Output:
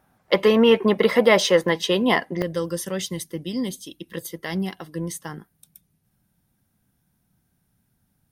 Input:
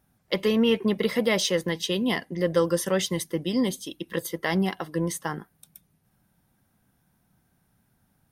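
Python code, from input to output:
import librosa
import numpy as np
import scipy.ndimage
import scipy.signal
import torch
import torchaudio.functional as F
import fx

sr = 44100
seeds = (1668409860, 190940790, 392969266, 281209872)

y = fx.peak_eq(x, sr, hz=920.0, db=fx.steps((0.0, 11.5), (2.42, -6.0)), octaves=2.9)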